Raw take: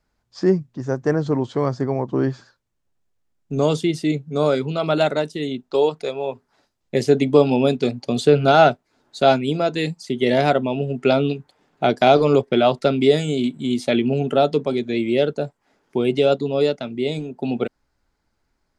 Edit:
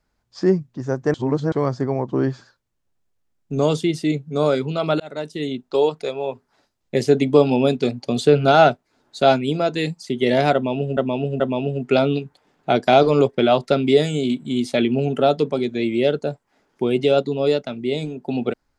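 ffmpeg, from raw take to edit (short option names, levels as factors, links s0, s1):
-filter_complex "[0:a]asplit=6[s0][s1][s2][s3][s4][s5];[s0]atrim=end=1.142[s6];[s1]atrim=start=1.138:end=1.522,asetpts=PTS-STARTPTS,areverse[s7];[s2]atrim=start=1.518:end=5,asetpts=PTS-STARTPTS,afade=t=out:st=3.478:d=0.004:c=hsin[s8];[s3]atrim=start=5:end=10.972,asetpts=PTS-STARTPTS,afade=t=in:d=0.41[s9];[s4]atrim=start=10.538:end=10.972[s10];[s5]atrim=start=10.538[s11];[s6][s7]acrossfade=d=0.004:c1=hsin:c2=hsin[s12];[s8][s9]concat=n=2:v=0:a=1[s13];[s12][s13]acrossfade=d=0.004:c1=hsin:c2=hsin[s14];[s14][s10]acrossfade=d=0.004:c1=hsin:c2=hsin[s15];[s15][s11]acrossfade=d=0.004:c1=hsin:c2=hsin"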